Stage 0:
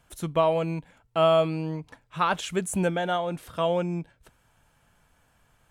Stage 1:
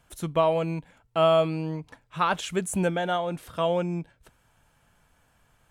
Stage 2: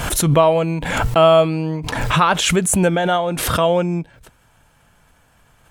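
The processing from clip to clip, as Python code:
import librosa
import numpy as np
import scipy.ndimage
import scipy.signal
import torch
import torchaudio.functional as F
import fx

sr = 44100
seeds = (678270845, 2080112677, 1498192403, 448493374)

y1 = x
y2 = fx.pre_swell(y1, sr, db_per_s=38.0)
y2 = y2 * 10.0 ** (8.5 / 20.0)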